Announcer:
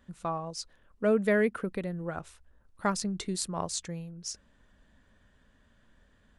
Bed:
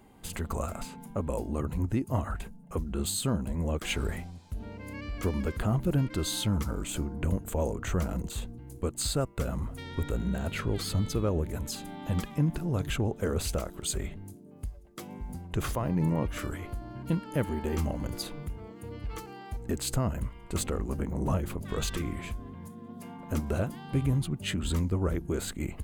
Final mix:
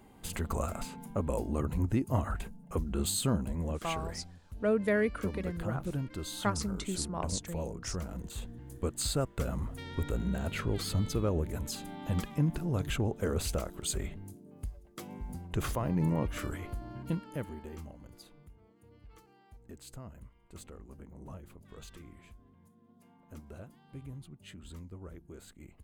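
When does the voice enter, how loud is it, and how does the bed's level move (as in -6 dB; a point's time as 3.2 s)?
3.60 s, -3.0 dB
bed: 3.34 s -0.5 dB
4.01 s -8.5 dB
8.12 s -8.5 dB
8.59 s -2 dB
16.96 s -2 dB
17.98 s -18 dB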